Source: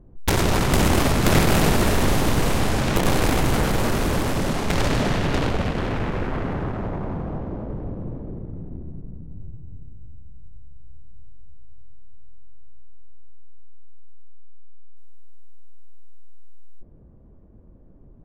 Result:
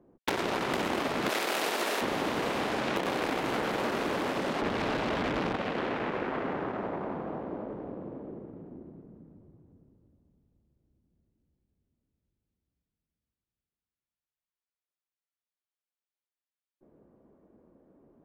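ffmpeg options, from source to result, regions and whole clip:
ffmpeg -i in.wav -filter_complex "[0:a]asettb=1/sr,asplit=3[link_01][link_02][link_03];[link_01]atrim=end=1.294[link_04];[link_02]atrim=start=1.29:end=2.01,asetpts=PTS-STARTPTS,afade=type=in:duration=0.004:curve=qsin,afade=type=out:start_time=0.716:duration=0.004:curve=qsin,highpass=360,highshelf=frequency=4300:gain=10.5[link_05];[link_03]atrim=start=2.006[link_06];[link_04][link_05]acrossfade=duration=0.004:curve1=hsin:curve2=qsin[link_07];[link_07][link_06]acrossfade=duration=0.004:curve1=qsin:curve2=hsin,asettb=1/sr,asplit=3[link_08][link_09][link_10];[link_08]atrim=end=4.614[link_11];[link_09]atrim=start=4.61:end=5.56,asetpts=PTS-STARTPTS,afade=type=in:duration=0.004:curve=qsin,afade=type=out:start_time=0.946:duration=0.004:curve=qsin,aeval=exprs='(mod(8.41*val(0)+1,2)-1)/8.41':channel_layout=same,aemphasis=mode=reproduction:type=riaa[link_12];[link_10]atrim=start=5.556[link_13];[link_11][link_12]acrossfade=duration=0.004:curve1=hsin:curve2=qsin[link_14];[link_14][link_13]acrossfade=duration=0.004:curve1=qsin:curve2=hsin,highpass=frequency=84:poles=1,acrossover=split=220 4400:gain=0.112 1 0.224[link_15][link_16][link_17];[link_15][link_16][link_17]amix=inputs=3:normalize=0,acompressor=threshold=-25dB:ratio=6,volume=-1.5dB" out.wav

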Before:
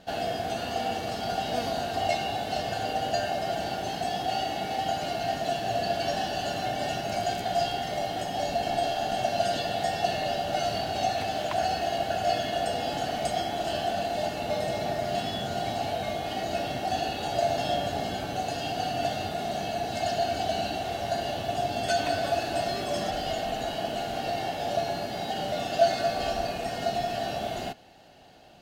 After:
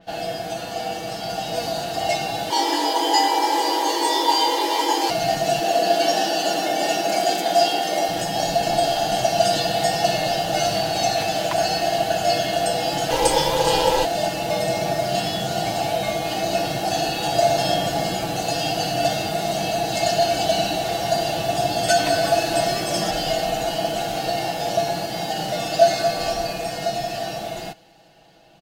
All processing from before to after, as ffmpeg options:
ffmpeg -i in.wav -filter_complex "[0:a]asettb=1/sr,asplit=3[link_01][link_02][link_03];[link_01]atrim=end=2.504[link_04];[link_02]atrim=start=2.5:end=5.1,asetpts=PTS-STARTPTS,afade=type=in:duration=0.004:curve=qsin,afade=type=out:start_time=2.596:duration=0.004:curve=qsin,asplit=2[link_05][link_06];[link_06]adelay=20,volume=-2dB[link_07];[link_05][link_07]amix=inputs=2:normalize=0,atrim=end_sample=114660,afreqshift=190,equalizer=frequency=370:width=1.4:gain=4[link_08];[link_03]atrim=start=5.096[link_09];[link_04][link_08]acrossfade=duration=0.004:curve1=hsin:curve2=qsin[link_10];[link_10][link_09]acrossfade=duration=0.004:curve1=qsin:curve2=hsin,asettb=1/sr,asplit=3[link_11][link_12][link_13];[link_11]atrim=end=5.614[link_14];[link_12]atrim=start=5.61:end=8.09,asetpts=PTS-STARTPTS,afade=type=in:duration=0.004:curve=qsin,afade=type=out:start_time=2.476:duration=0.004:curve=qsin,highpass=frequency=270:width=0.5412,highpass=frequency=270:width=1.3066,lowshelf=frequency=350:gain=9[link_15];[link_13]atrim=start=8.086[link_16];[link_14][link_15]acrossfade=duration=0.004:curve1=hsin:curve2=qsin[link_17];[link_17][link_16]acrossfade=duration=0.004:curve1=qsin:curve2=hsin,asettb=1/sr,asplit=3[link_18][link_19][link_20];[link_18]atrim=end=13.104[link_21];[link_19]atrim=start=13.1:end=14.05,asetpts=PTS-STARTPTS,afade=type=in:duration=0.004:curve=qsin,afade=type=out:start_time=0.946:duration=0.004:curve=qsin,acontrast=75,aeval=exprs='val(0)*sin(2*PI*180*n/s)':channel_layout=same[link_22];[link_20]atrim=start=14.046[link_23];[link_21][link_22]acrossfade=duration=0.004:curve1=hsin:curve2=qsin[link_24];[link_24][link_23]acrossfade=duration=0.004:curve1=qsin:curve2=hsin,aecho=1:1:6.1:0.65,dynaudnorm=framelen=280:gausssize=17:maxgain=6dB,adynamicequalizer=threshold=0.00891:dfrequency=4600:dqfactor=0.7:tfrequency=4600:tqfactor=0.7:attack=5:release=100:ratio=0.375:range=3.5:mode=boostabove:tftype=highshelf" out.wav

